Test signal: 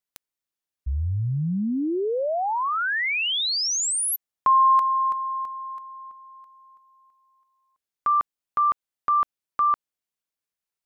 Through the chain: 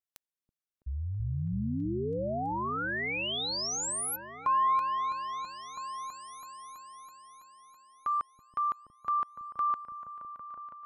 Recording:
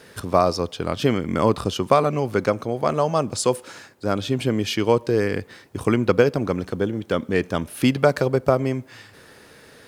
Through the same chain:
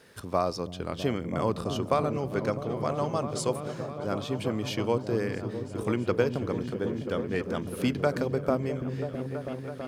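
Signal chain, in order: repeats that get brighter 0.328 s, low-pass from 200 Hz, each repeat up 1 oct, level -3 dB; gain -9 dB

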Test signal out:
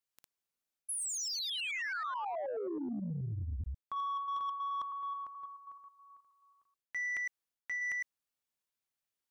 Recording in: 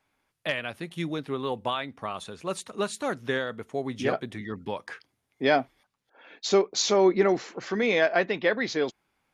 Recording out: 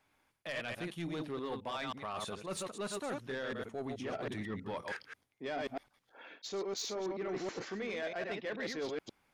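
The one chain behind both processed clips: reverse delay 0.107 s, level -6 dB; reverse; compressor 10:1, threshold -33 dBFS; reverse; soft clip -31.5 dBFS

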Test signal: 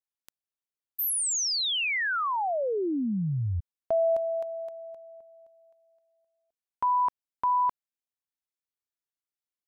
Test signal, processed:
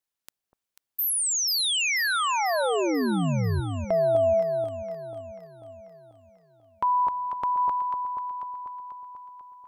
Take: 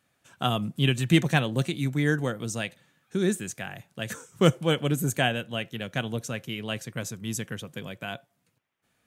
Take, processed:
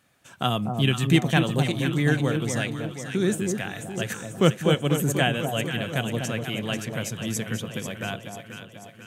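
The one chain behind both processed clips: in parallel at +0.5 dB: compressor, threshold -39 dBFS; on the sum: echo with dull and thin repeats by turns 0.245 s, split 1000 Hz, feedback 72%, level -5 dB

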